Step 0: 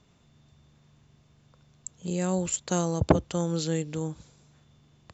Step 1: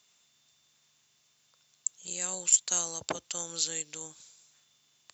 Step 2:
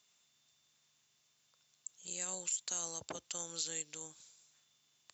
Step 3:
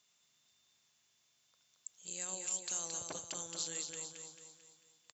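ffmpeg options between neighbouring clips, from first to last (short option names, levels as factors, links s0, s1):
-af "aderivative,volume=2.66"
-af "alimiter=limit=0.0944:level=0:latency=1:release=37,volume=0.531"
-af "aecho=1:1:222|444|666|888|1110|1332:0.562|0.264|0.124|0.0584|0.0274|0.0129,volume=0.841"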